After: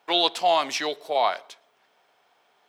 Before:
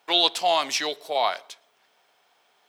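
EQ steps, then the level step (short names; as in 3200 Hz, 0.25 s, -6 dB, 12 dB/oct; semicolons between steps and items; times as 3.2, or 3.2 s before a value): high shelf 2800 Hz -7.5 dB; +2.0 dB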